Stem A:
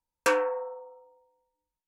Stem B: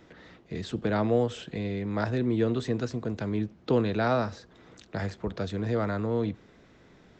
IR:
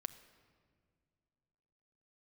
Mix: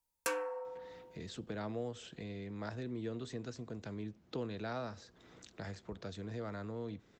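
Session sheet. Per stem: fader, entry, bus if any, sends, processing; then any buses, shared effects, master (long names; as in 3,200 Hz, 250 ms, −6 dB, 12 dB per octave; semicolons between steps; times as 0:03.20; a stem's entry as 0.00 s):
−4.0 dB, 0.00 s, send −7.5 dB, no processing
−6.0 dB, 0.65 s, no send, no processing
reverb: on, pre-delay 6 ms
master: high-shelf EQ 5,300 Hz +10.5 dB; downward compressor 1.5 to 1, threshold −53 dBFS, peak gain reduction 11.5 dB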